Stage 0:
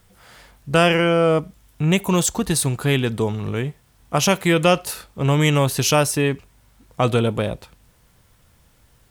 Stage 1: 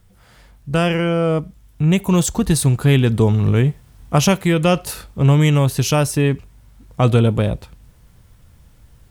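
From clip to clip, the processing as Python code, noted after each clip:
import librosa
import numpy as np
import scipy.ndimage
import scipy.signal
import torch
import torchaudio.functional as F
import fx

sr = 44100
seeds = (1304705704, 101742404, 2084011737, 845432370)

y = fx.rider(x, sr, range_db=4, speed_s=0.5)
y = fx.low_shelf(y, sr, hz=220.0, db=11.0)
y = F.gain(torch.from_numpy(y), -1.0).numpy()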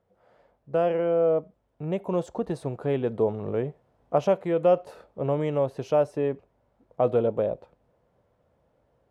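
y = fx.bandpass_q(x, sr, hz=570.0, q=2.4)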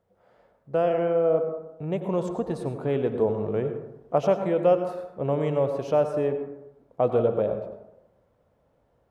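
y = fx.rev_plate(x, sr, seeds[0], rt60_s=0.9, hf_ratio=0.35, predelay_ms=80, drr_db=7.0)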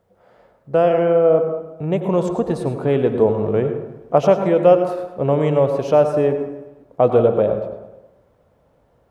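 y = fx.echo_feedback(x, sr, ms=106, feedback_pct=57, wet_db=-18)
y = F.gain(torch.from_numpy(y), 8.0).numpy()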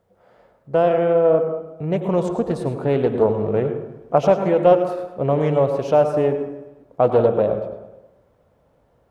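y = fx.doppler_dist(x, sr, depth_ms=0.21)
y = F.gain(torch.from_numpy(y), -1.5).numpy()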